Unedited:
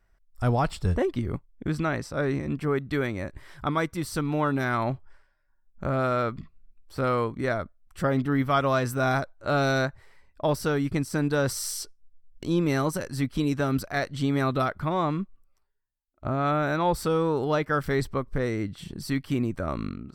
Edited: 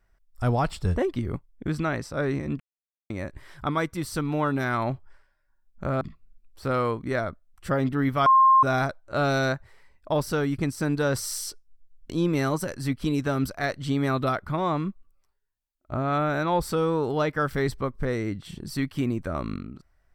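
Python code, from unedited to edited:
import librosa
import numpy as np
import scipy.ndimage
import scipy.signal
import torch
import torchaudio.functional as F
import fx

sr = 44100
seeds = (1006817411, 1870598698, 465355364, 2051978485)

y = fx.edit(x, sr, fx.silence(start_s=2.6, length_s=0.5),
    fx.cut(start_s=6.01, length_s=0.33),
    fx.bleep(start_s=8.59, length_s=0.37, hz=1060.0, db=-13.0), tone=tone)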